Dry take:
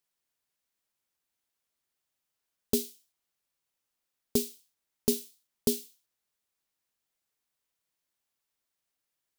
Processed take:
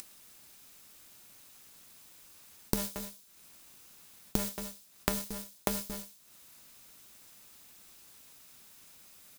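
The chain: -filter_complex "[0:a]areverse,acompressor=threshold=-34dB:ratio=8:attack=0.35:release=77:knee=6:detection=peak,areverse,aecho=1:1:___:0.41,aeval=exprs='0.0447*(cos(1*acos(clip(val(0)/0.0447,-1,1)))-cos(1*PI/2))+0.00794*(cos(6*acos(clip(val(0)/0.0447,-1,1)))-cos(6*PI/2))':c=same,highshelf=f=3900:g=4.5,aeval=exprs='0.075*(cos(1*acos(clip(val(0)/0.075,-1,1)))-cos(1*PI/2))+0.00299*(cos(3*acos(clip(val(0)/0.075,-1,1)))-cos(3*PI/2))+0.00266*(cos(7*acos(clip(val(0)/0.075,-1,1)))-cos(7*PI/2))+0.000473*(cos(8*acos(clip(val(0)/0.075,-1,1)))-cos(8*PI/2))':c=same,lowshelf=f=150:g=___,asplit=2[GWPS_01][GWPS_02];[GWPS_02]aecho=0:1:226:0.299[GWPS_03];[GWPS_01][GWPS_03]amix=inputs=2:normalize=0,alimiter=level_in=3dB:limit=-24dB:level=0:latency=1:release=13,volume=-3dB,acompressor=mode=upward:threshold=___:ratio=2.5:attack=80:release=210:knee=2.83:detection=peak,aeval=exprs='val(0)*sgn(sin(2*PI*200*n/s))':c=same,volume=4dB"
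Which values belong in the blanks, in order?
0.8, 7.5, -44dB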